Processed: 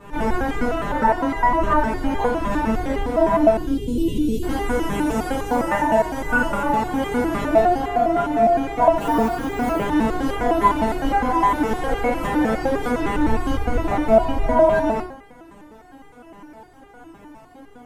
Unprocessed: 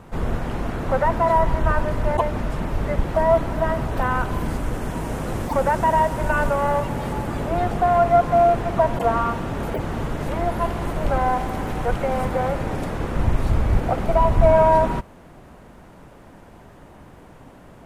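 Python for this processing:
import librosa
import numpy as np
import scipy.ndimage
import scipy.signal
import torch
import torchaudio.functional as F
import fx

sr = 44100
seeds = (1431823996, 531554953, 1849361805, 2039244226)

p1 = fx.ellip_bandstop(x, sr, low_hz=420.0, high_hz=3100.0, order=3, stop_db=40, at=(3.55, 4.43))
p2 = fx.rider(p1, sr, range_db=5, speed_s=0.5)
p3 = p1 + F.gain(torch.from_numpy(p2), 1.0).numpy()
p4 = fx.mod_noise(p3, sr, seeds[0], snr_db=26, at=(9.0, 9.69))
p5 = fx.rev_fdn(p4, sr, rt60_s=0.66, lf_ratio=0.95, hf_ratio=0.55, size_ms=20.0, drr_db=-6.5)
p6 = fx.resonator_held(p5, sr, hz=9.8, low_hz=200.0, high_hz=400.0)
y = F.gain(torch.from_numpy(p6), 3.0).numpy()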